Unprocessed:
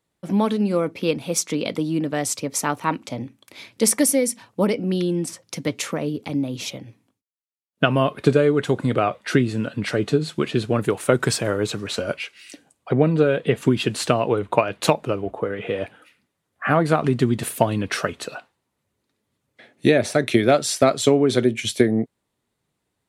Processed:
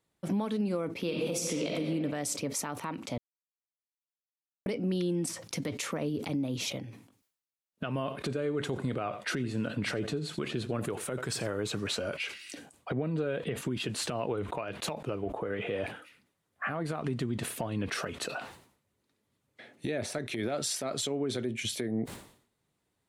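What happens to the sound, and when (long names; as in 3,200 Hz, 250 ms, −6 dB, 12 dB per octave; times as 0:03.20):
0:00.99–0:01.73: thrown reverb, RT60 1.6 s, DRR −0.5 dB
0:03.18–0:04.66: silence
0:07.88–0:11.51: single-tap delay 86 ms −18.5 dB
0:17.26–0:17.89: high-shelf EQ 7,700 Hz −8.5 dB
0:20.18–0:21.07: downward compressor, threshold −20 dBFS
whole clip: downward compressor 6 to 1, threshold −24 dBFS; brickwall limiter −20 dBFS; level that may fall only so fast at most 99 dB per second; level −3 dB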